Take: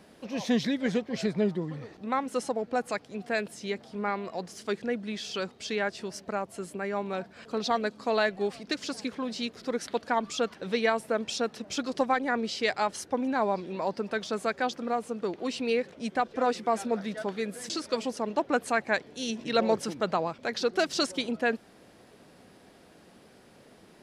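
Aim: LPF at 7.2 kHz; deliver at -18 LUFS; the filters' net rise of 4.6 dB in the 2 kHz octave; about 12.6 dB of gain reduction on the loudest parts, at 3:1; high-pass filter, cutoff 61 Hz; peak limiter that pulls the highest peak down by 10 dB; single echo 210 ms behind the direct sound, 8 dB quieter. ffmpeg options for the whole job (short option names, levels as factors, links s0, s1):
-af "highpass=61,lowpass=7200,equalizer=f=2000:t=o:g=6,acompressor=threshold=0.0141:ratio=3,alimiter=level_in=2.37:limit=0.0631:level=0:latency=1,volume=0.422,aecho=1:1:210:0.398,volume=15"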